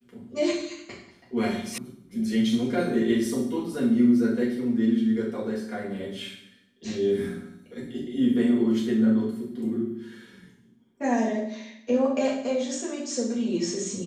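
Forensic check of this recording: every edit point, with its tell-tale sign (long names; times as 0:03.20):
0:01.78: cut off before it has died away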